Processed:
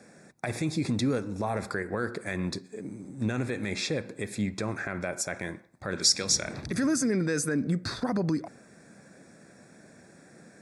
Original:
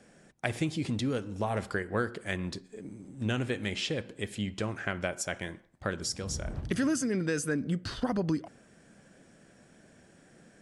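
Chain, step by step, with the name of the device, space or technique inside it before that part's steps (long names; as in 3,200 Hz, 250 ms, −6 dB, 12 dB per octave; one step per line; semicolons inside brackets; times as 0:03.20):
PA system with an anti-feedback notch (high-pass filter 100 Hz; Butterworth band-reject 3,000 Hz, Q 3.3; brickwall limiter −24 dBFS, peak gain reduction 11 dB)
0:05.96–0:06.66: meter weighting curve D
level +5 dB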